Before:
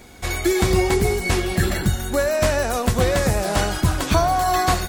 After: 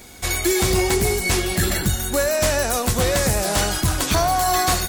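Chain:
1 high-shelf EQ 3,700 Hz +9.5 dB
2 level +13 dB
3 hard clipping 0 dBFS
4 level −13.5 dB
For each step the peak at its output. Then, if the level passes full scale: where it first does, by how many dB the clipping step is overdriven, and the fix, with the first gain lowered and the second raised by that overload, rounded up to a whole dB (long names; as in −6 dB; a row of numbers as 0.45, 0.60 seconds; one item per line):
−3.5, +9.5, 0.0, −13.5 dBFS
step 2, 9.5 dB
step 2 +3 dB, step 4 −3.5 dB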